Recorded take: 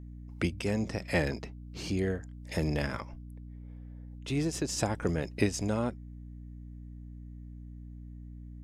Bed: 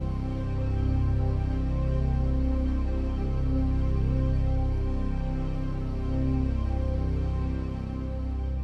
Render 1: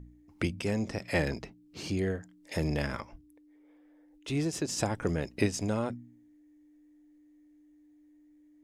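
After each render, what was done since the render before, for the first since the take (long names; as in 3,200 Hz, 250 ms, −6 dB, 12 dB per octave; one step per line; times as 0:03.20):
hum removal 60 Hz, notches 4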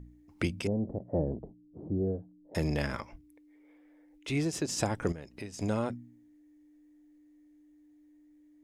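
0:00.67–0:02.55: inverse Chebyshev low-pass filter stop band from 2,400 Hz, stop band 60 dB
0:03.06–0:04.39: parametric band 2,200 Hz +7.5 dB 0.35 octaves
0:05.12–0:05.59: downward compressor 2 to 1, threshold −49 dBFS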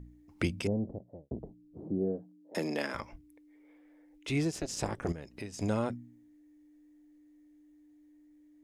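0:00.64–0:01.31: fade out and dull
0:01.83–0:02.94: high-pass filter 120 Hz → 260 Hz 24 dB per octave
0:04.51–0:05.08: amplitude modulation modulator 270 Hz, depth 95%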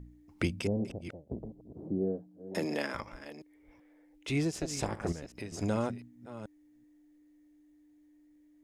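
delay that plays each chunk backwards 380 ms, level −13 dB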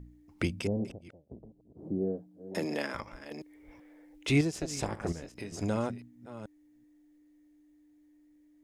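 0:00.87–0:01.87: duck −9 dB, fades 0.13 s
0:03.31–0:04.41: clip gain +6 dB
0:05.14–0:05.54: double-tracking delay 24 ms −9 dB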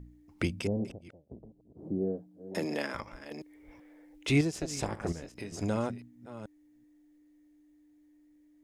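no processing that can be heard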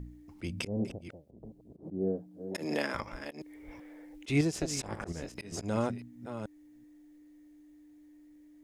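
volume swells 168 ms
in parallel at −0.5 dB: downward compressor, threshold −42 dBFS, peak gain reduction 18 dB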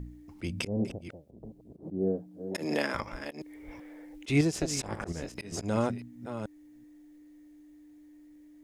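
level +2.5 dB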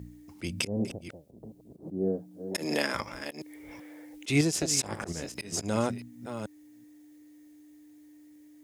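high-pass filter 77 Hz
high-shelf EQ 3,700 Hz +9.5 dB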